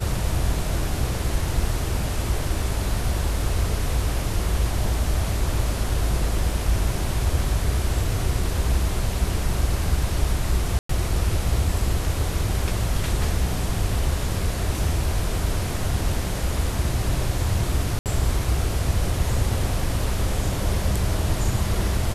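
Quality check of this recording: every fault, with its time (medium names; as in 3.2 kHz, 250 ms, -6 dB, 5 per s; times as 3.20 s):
10.79–10.89 s: dropout 104 ms
17.99–18.06 s: dropout 68 ms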